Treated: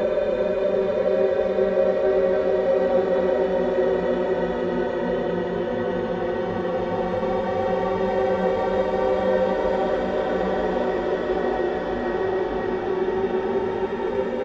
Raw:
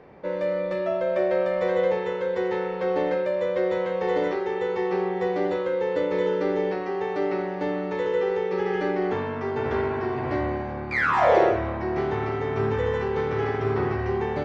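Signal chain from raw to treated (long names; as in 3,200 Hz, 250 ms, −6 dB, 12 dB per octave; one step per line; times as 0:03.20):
tape wow and flutter 80 cents
comb filter 5.3 ms
on a send: echo with shifted repeats 171 ms, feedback 33%, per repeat −140 Hz, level −9.5 dB
on the sum: extreme stretch with random phases 13×, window 0.50 s, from 0:03.45
notch filter 2,100 Hz, Q 7.8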